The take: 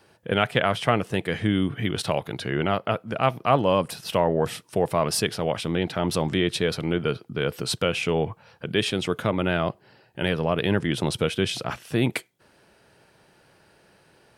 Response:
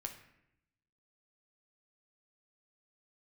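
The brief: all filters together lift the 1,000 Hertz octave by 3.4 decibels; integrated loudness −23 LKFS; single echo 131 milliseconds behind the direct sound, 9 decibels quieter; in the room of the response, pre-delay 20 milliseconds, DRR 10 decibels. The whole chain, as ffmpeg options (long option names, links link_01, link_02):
-filter_complex "[0:a]equalizer=frequency=1000:width_type=o:gain=4.5,aecho=1:1:131:0.355,asplit=2[link_01][link_02];[1:a]atrim=start_sample=2205,adelay=20[link_03];[link_02][link_03]afir=irnorm=-1:irlink=0,volume=-8dB[link_04];[link_01][link_04]amix=inputs=2:normalize=0"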